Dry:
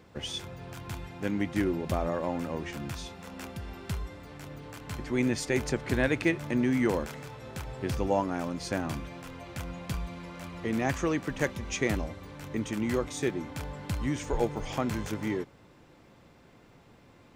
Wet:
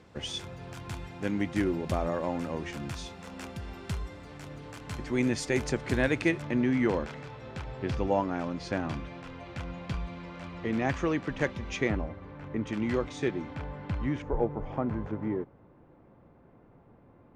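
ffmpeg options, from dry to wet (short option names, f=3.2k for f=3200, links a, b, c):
-af "asetnsamples=n=441:p=0,asendcmd='6.42 lowpass f 4200;11.89 lowpass f 1900;12.67 lowpass f 4000;13.55 lowpass f 2400;14.22 lowpass f 1100',lowpass=9.8k"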